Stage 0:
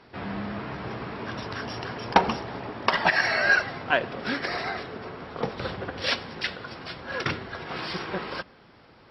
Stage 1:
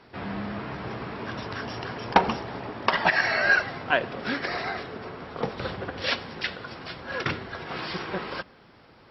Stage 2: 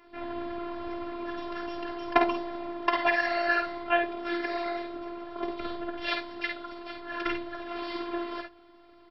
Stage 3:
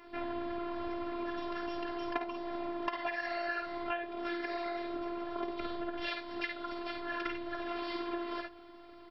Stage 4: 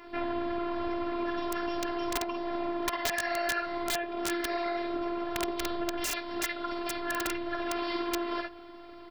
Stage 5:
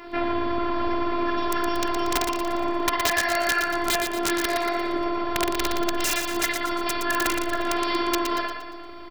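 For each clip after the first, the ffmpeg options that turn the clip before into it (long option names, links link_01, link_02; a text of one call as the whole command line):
ffmpeg -i in.wav -filter_complex "[0:a]acrossover=split=5900[link_01][link_02];[link_02]acompressor=threshold=-58dB:ratio=4:attack=1:release=60[link_03];[link_01][link_03]amix=inputs=2:normalize=0" out.wav
ffmpeg -i in.wav -af "highshelf=frequency=3300:width_type=q:width=1.5:gain=-6,afftfilt=real='hypot(re,im)*cos(PI*b)':imag='0':win_size=512:overlap=0.75,aecho=1:1:52|67:0.531|0.299" out.wav
ffmpeg -i in.wav -af "acompressor=threshold=-35dB:ratio=8,volume=2.5dB" out.wav
ffmpeg -i in.wav -af "aeval=exprs='(mod(16.8*val(0)+1,2)-1)/16.8':channel_layout=same,volume=5.5dB" out.wav
ffmpeg -i in.wav -af "aecho=1:1:117|234|351|468|585|702:0.501|0.231|0.106|0.0488|0.0224|0.0103,volume=7.5dB" out.wav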